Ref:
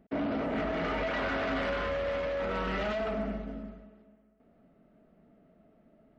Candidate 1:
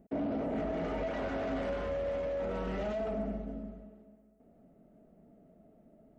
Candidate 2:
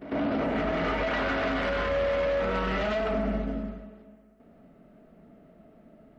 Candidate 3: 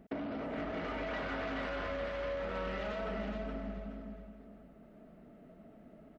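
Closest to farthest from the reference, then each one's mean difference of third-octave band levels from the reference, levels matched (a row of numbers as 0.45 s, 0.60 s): 2, 1, 3; 1.5 dB, 2.5 dB, 5.0 dB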